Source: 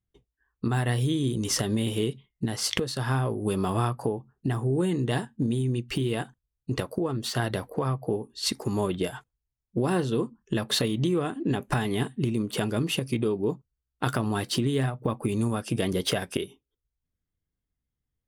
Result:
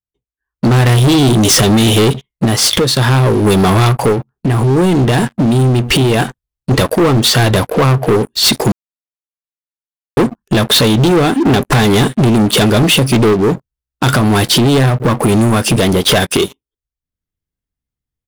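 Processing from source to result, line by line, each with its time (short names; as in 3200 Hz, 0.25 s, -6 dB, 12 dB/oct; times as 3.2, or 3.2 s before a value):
4.12–6.71 compressor, threshold -31 dBFS
8.72–10.17 mute
13.33–16.09 compressor 1.5:1, threshold -38 dBFS
whole clip: dynamic EQ 3500 Hz, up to +7 dB, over -52 dBFS, Q 6.6; AGC gain up to 15 dB; sample leveller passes 5; gain -5 dB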